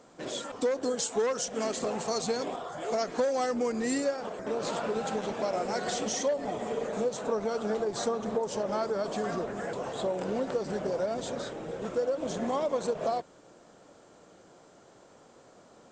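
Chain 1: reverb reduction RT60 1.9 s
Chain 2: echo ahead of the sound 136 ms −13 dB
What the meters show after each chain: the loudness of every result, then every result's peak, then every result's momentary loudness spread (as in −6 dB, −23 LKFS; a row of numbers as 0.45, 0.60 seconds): −33.5, −31.5 LKFS; −17.5, −17.5 dBFS; 7, 6 LU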